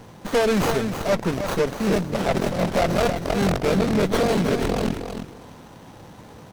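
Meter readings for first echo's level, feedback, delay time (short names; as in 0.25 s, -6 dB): -8.0 dB, 17%, 0.316 s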